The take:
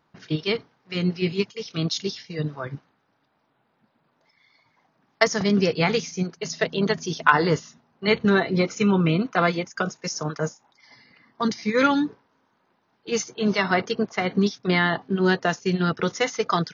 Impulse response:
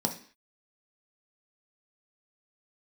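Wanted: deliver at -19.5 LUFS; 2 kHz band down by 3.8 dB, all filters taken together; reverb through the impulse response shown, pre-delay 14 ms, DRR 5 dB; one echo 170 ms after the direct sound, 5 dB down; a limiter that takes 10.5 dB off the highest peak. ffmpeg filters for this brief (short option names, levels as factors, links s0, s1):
-filter_complex "[0:a]equalizer=f=2000:t=o:g=-5,alimiter=limit=0.2:level=0:latency=1,aecho=1:1:170:0.562,asplit=2[s0][s1];[1:a]atrim=start_sample=2205,adelay=14[s2];[s1][s2]afir=irnorm=-1:irlink=0,volume=0.266[s3];[s0][s3]amix=inputs=2:normalize=0,volume=1.19"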